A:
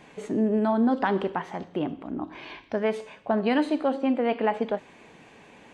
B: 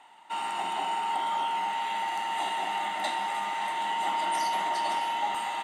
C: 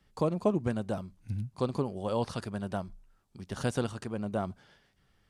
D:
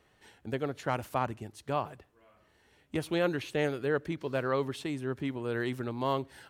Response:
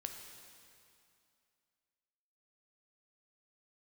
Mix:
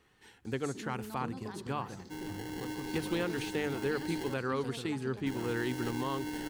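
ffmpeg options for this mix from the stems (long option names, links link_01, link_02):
-filter_complex "[0:a]aexciter=amount=7.6:drive=7.4:freq=4400,adelay=450,volume=-18.5dB,asplit=2[link_01][link_02];[link_02]volume=-10dB[link_03];[1:a]acrusher=samples=36:mix=1:aa=0.000001,adelay=1800,volume=-11dB,asplit=3[link_04][link_05][link_06];[link_04]atrim=end=4.34,asetpts=PTS-STARTPTS,afade=type=out:start_time=4.336:duration=0.004:curve=hsin[link_07];[link_05]atrim=start=4.34:end=5.26,asetpts=PTS-STARTPTS,volume=0[link_08];[link_06]atrim=start=5.26,asetpts=PTS-STARTPTS,afade=type=in:duration=0.004:curve=hsin[link_09];[link_07][link_08][link_09]concat=n=3:v=0:a=1,asplit=2[link_10][link_11];[link_11]volume=-10.5dB[link_12];[2:a]adelay=1000,volume=-14dB,asplit=2[link_13][link_14];[link_14]volume=-4.5dB[link_15];[3:a]bandreject=frequency=50:width_type=h:width=6,bandreject=frequency=100:width_type=h:width=6,bandreject=frequency=150:width_type=h:width=6,volume=0dB[link_16];[link_01][link_13]amix=inputs=2:normalize=0,equalizer=frequency=4400:width=2.5:gain=7.5,acompressor=threshold=-45dB:ratio=2.5,volume=0dB[link_17];[link_10][link_16]amix=inputs=2:normalize=0,alimiter=limit=-21dB:level=0:latency=1:release=175,volume=0dB[link_18];[4:a]atrim=start_sample=2205[link_19];[link_03][link_12][link_15]amix=inputs=3:normalize=0[link_20];[link_20][link_19]afir=irnorm=-1:irlink=0[link_21];[link_17][link_18][link_21]amix=inputs=3:normalize=0,equalizer=frequency=620:width_type=o:width=0.29:gain=-14"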